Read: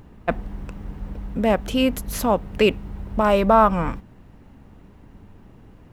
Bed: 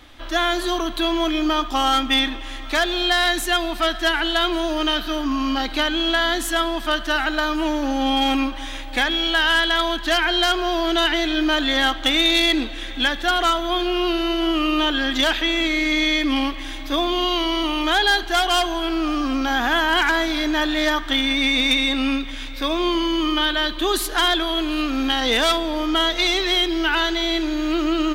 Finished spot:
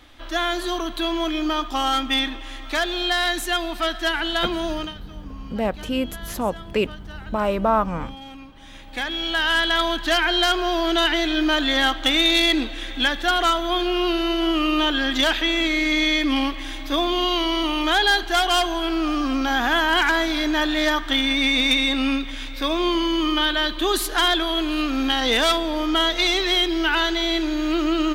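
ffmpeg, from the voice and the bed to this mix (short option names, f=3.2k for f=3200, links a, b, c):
-filter_complex "[0:a]adelay=4150,volume=-4.5dB[a];[1:a]volume=17dB,afade=t=out:st=4.72:d=0.22:silence=0.133352,afade=t=in:st=8.48:d=1.31:silence=0.1[b];[a][b]amix=inputs=2:normalize=0"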